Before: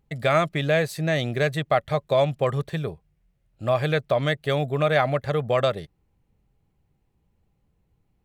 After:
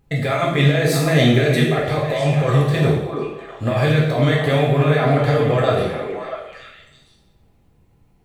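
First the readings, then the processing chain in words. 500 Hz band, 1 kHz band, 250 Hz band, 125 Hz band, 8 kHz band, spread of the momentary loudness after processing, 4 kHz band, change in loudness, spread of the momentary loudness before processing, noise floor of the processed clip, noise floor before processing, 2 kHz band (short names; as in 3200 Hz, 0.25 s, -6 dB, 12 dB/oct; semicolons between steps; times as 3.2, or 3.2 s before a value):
+4.5 dB, +3.5 dB, +11.0 dB, +10.5 dB, n/a, 12 LU, +6.5 dB, +6.0 dB, 6 LU, -57 dBFS, -70 dBFS, +5.5 dB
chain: negative-ratio compressor -25 dBFS, ratio -1; on a send: delay with a stepping band-pass 0.322 s, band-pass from 340 Hz, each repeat 1.4 oct, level -2.5 dB; on the sum: two-slope reverb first 0.82 s, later 2.4 s, from -27 dB, DRR -4 dB; gain +3.5 dB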